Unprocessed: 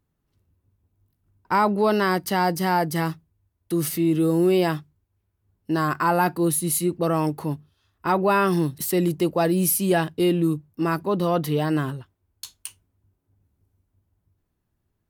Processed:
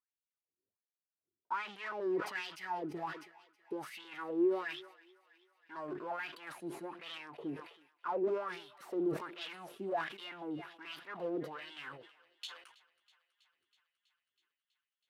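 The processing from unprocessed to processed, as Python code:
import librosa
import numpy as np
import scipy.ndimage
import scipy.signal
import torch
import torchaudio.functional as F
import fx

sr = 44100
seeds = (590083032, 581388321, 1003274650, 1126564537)

y = fx.highpass(x, sr, hz=240.0, slope=6)
y = fx.peak_eq(y, sr, hz=940.0, db=-6.0, octaves=1.7)
y = fx.notch(y, sr, hz=790.0, q=12.0)
y = fx.leveller(y, sr, passes=3)
y = fx.chopper(y, sr, hz=1.7, depth_pct=60, duty_pct=20)
y = 10.0 ** (-26.5 / 20.0) * np.tanh(y / 10.0 ** (-26.5 / 20.0))
y = fx.wah_lfo(y, sr, hz=1.3, low_hz=350.0, high_hz=3300.0, q=6.0)
y = fx.echo_thinned(y, sr, ms=324, feedback_pct=73, hz=600.0, wet_db=-22.0)
y = fx.sustainer(y, sr, db_per_s=97.0)
y = y * librosa.db_to_amplitude(2.0)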